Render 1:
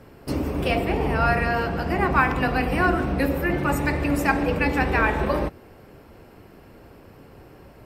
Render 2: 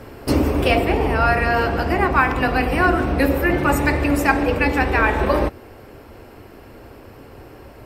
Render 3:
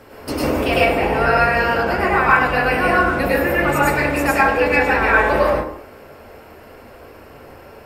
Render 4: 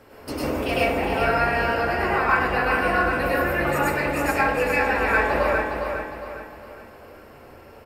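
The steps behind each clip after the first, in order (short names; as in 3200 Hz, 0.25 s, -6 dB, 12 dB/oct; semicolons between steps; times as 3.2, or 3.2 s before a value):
bell 170 Hz -13.5 dB 0.29 oct; vocal rider within 5 dB 0.5 s; gain +5 dB
low shelf 250 Hz -9.5 dB; plate-style reverb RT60 0.58 s, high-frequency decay 0.5×, pre-delay 90 ms, DRR -6 dB; gain -3 dB
feedback echo 0.408 s, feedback 41%, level -5.5 dB; gain -6.5 dB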